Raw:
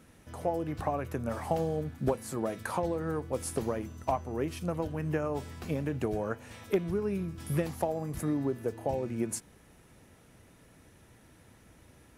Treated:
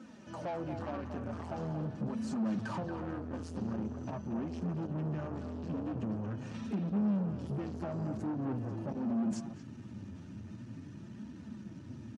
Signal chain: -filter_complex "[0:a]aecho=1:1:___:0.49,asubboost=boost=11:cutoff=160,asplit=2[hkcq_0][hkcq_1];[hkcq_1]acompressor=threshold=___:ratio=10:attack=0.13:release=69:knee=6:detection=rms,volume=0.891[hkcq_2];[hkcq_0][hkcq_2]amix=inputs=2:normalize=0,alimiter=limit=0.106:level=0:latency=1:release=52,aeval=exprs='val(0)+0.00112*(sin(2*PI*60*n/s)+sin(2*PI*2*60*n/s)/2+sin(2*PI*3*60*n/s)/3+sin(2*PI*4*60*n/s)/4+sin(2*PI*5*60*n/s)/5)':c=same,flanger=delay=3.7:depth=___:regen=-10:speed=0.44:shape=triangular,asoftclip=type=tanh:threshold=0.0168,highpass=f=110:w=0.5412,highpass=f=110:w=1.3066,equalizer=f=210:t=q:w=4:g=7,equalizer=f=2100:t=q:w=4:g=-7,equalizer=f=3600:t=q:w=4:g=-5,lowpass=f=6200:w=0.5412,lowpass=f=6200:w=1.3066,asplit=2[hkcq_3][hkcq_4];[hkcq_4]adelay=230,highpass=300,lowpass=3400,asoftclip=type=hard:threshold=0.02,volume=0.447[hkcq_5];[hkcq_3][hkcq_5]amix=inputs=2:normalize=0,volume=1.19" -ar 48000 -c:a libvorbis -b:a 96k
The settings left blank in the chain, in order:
3.3, 0.0178, 7.8